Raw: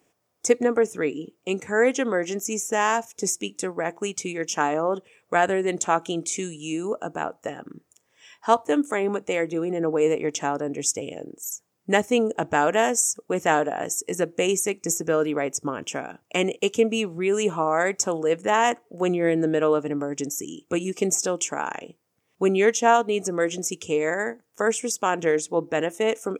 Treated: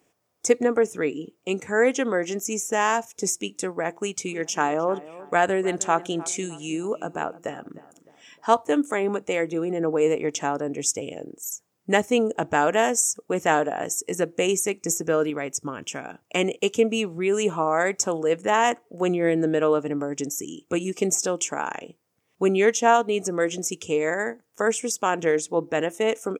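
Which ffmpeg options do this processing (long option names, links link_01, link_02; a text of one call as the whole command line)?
ffmpeg -i in.wav -filter_complex "[0:a]asplit=3[link_01][link_02][link_03];[link_01]afade=type=out:start_time=4.27:duration=0.02[link_04];[link_02]asplit=2[link_05][link_06];[link_06]adelay=306,lowpass=frequency=1900:poles=1,volume=-17.5dB,asplit=2[link_07][link_08];[link_08]adelay=306,lowpass=frequency=1900:poles=1,volume=0.44,asplit=2[link_09][link_10];[link_10]adelay=306,lowpass=frequency=1900:poles=1,volume=0.44,asplit=2[link_11][link_12];[link_12]adelay=306,lowpass=frequency=1900:poles=1,volume=0.44[link_13];[link_05][link_07][link_09][link_11][link_13]amix=inputs=5:normalize=0,afade=type=in:start_time=4.27:duration=0.02,afade=type=out:start_time=8.55:duration=0.02[link_14];[link_03]afade=type=in:start_time=8.55:duration=0.02[link_15];[link_04][link_14][link_15]amix=inputs=3:normalize=0,asettb=1/sr,asplit=3[link_16][link_17][link_18];[link_16]atrim=end=15.304[link_19];[link_17]atrim=start=15.3:end=16.05,asetpts=PTS-STARTPTS,afade=type=in:duration=0.004:curve=qsin,afade=type=out:start_time=0.746:duration=0.004:curve=qsin,equalizer=frequency=560:width=0.55:gain=-5.5[link_20];[link_18]atrim=start=16.046[link_21];[link_19][link_20]acrossfade=duration=0.004:curve1=hsin:curve2=qsin[link_22];[link_22][link_21]acrossfade=duration=0.004:curve1=qsin:curve2=hsin" out.wav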